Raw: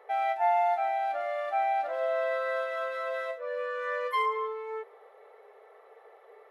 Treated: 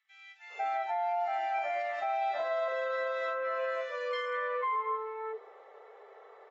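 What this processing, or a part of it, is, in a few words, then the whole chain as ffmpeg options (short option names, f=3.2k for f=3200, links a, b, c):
low-bitrate web radio: -filter_complex "[0:a]asettb=1/sr,asplit=3[a][b][c];[a]atrim=end=1.084[d];[b]atrim=start=1.08:end=2.18,asetpts=PTS-STARTPTS,afade=t=in:d=0.004:c=qsin,afade=t=out:st=1.096:d=0.004:c=qsin,aecho=1:1:4.7:0.86,atrim=end_sample=48510[e];[c]atrim=start=2.176[f];[d][e]acrossfade=d=0.004:c1=hsin:c2=qsin[g];[g][f]acrossfade=d=0.004:c1=qsin:c2=hsin,acrossover=split=530|2200[h][i][j];[i]adelay=500[k];[h]adelay=540[l];[l][k][j]amix=inputs=3:normalize=0,dynaudnorm=f=310:g=3:m=10.5dB,alimiter=limit=-17.5dB:level=0:latency=1:release=110,volume=-7.5dB" -ar 24000 -c:a aac -b:a 24k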